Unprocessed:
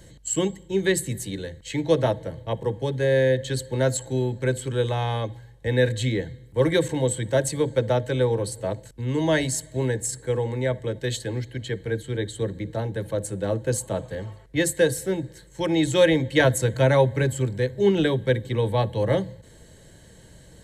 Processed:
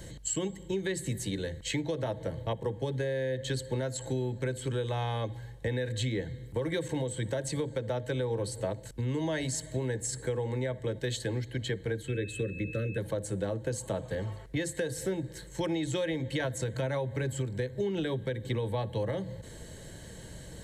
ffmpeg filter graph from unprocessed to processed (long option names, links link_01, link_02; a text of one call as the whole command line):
ffmpeg -i in.wav -filter_complex "[0:a]asettb=1/sr,asplit=3[link_01][link_02][link_03];[link_01]atrim=end=12.084[link_04];[link_02]atrim=start=12.08:end=12.98,asetpts=PTS-STARTPTS,afade=type=in:duration=0.004:curve=qsin,afade=type=out:start_time=0.896:duration=0.004:curve=qsin,equalizer=frequency=4900:width=0.93:gain=-6.5,aeval=exprs='val(0)+0.00891*sin(2*PI*2600*n/s)':channel_layout=same,asuperstop=centerf=840:order=12:qfactor=1.4[link_05];[link_03]atrim=start=12.976[link_06];[link_04][link_05]acrossfade=duration=0.004:curve1=hsin:curve2=qsin[link_07];[link_07][link_06]acrossfade=duration=0.004:curve1=qsin:curve2=hsin,acrossover=split=7900[link_08][link_09];[link_09]acompressor=threshold=-43dB:ratio=4:attack=1:release=60[link_10];[link_08][link_10]amix=inputs=2:normalize=0,alimiter=limit=-17dB:level=0:latency=1:release=209,acompressor=threshold=-35dB:ratio=3,volume=3.5dB" out.wav